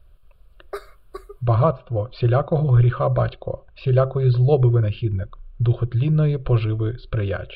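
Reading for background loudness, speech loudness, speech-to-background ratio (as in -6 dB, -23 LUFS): -39.5 LUFS, -20.5 LUFS, 19.0 dB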